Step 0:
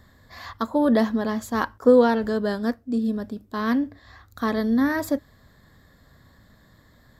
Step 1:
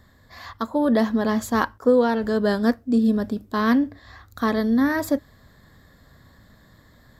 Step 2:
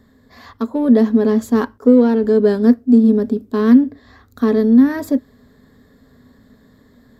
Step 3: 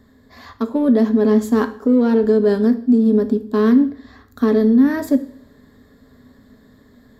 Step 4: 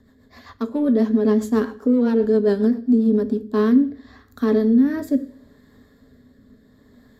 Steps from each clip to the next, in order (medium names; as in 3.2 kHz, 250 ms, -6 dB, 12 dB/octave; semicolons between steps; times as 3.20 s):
gain riding within 5 dB 0.5 s; trim +2 dB
in parallel at -9.5 dB: overload inside the chain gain 23 dB; on the sum: small resonant body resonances 250/420 Hz, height 16 dB, ringing for 65 ms; trim -5 dB
peak limiter -7.5 dBFS, peak gain reduction 6.5 dB; two-slope reverb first 0.54 s, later 1.6 s, from -23 dB, DRR 9 dB
rotary cabinet horn 7.5 Hz, later 0.7 Hz, at 2.99 s; trim -1.5 dB